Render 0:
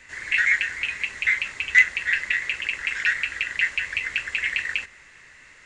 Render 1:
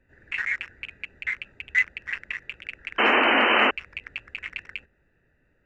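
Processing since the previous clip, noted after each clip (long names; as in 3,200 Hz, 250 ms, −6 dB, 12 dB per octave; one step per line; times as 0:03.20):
adaptive Wiener filter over 41 samples
sound drawn into the spectrogram noise, 0:02.98–0:03.71, 210–3,100 Hz −14 dBFS
high-shelf EQ 3,900 Hz −9 dB
level −4 dB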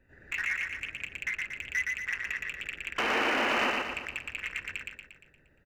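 downward compressor 2.5 to 1, threshold −30 dBFS, peak gain reduction 10 dB
hard clipping −24.5 dBFS, distortion −15 dB
repeating echo 117 ms, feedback 51%, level −3 dB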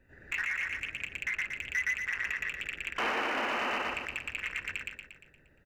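dynamic equaliser 990 Hz, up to +4 dB, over −39 dBFS, Q 0.78
brickwall limiter −25 dBFS, peak gain reduction 9.5 dB
level +1 dB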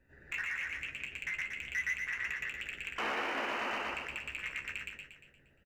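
tuned comb filter 69 Hz, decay 0.16 s, harmonics all, mix 80%
echo with shifted repeats 127 ms, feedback 31%, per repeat +81 Hz, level −10 dB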